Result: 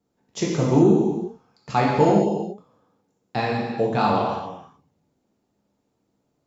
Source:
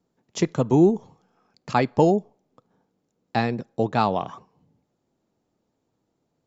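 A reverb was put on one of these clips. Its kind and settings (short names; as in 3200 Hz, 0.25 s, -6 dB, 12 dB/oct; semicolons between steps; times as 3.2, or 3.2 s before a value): non-linear reverb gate 0.44 s falling, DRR -4.5 dB; gain -3.5 dB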